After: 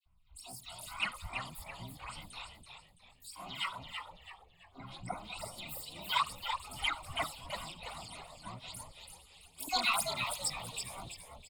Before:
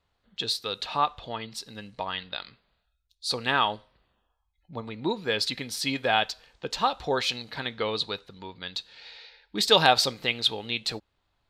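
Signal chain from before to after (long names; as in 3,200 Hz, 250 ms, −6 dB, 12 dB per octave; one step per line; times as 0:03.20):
pitch shifter swept by a sawtooth +10 semitones, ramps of 215 ms
in parallel at +1 dB: downward compressor 6 to 1, threshold −40 dBFS, peak gain reduction 23 dB
on the sum: convolution reverb RT60 0.20 s, pre-delay 3 ms, DRR −4 dB
output level in coarse steps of 16 dB
all-pass phaser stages 8, 2.4 Hz, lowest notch 200–4,000 Hz
pitch-shifted copies added +7 semitones −2 dB
parametric band 290 Hz −8.5 dB 2.5 octaves
phaser with its sweep stopped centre 1,700 Hz, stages 6
all-pass dispersion lows, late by 58 ms, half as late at 1,500 Hz
on a send: echo with shifted repeats 332 ms, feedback 36%, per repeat −93 Hz, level −6 dB
on the sum: level −7 dB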